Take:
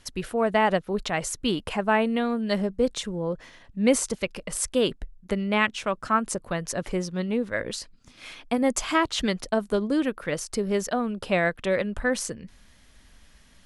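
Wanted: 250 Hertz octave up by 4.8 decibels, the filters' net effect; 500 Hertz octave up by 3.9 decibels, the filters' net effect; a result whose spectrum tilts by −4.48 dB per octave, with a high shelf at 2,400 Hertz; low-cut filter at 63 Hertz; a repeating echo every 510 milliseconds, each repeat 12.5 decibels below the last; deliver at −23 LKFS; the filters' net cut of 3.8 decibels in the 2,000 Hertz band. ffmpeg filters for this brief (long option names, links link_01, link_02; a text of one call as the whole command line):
ffmpeg -i in.wav -af "highpass=63,equalizer=frequency=250:width_type=o:gain=5,equalizer=frequency=500:width_type=o:gain=3.5,equalizer=frequency=2000:width_type=o:gain=-7,highshelf=frequency=2400:gain=4.5,aecho=1:1:510|1020|1530:0.237|0.0569|0.0137" out.wav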